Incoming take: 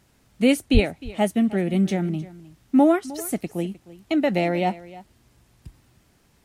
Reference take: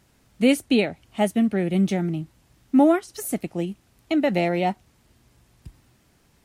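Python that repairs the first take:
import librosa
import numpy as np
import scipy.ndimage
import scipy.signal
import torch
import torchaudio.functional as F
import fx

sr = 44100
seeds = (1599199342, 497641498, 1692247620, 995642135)

y = fx.highpass(x, sr, hz=140.0, slope=24, at=(0.73, 0.85), fade=0.02)
y = fx.fix_echo_inverse(y, sr, delay_ms=308, level_db=-18.5)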